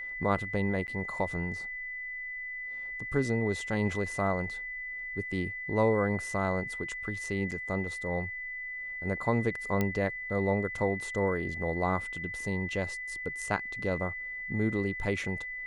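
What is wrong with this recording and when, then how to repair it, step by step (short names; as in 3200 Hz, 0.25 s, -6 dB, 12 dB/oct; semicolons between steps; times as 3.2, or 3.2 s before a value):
tone 2000 Hz -36 dBFS
0.87–0.88 gap 9.7 ms
7.51–7.52 gap 7.1 ms
9.81 pop -15 dBFS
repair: de-click; notch 2000 Hz, Q 30; interpolate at 0.87, 9.7 ms; interpolate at 7.51, 7.1 ms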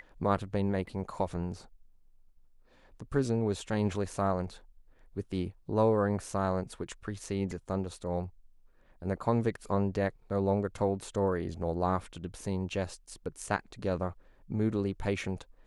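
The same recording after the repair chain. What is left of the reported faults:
none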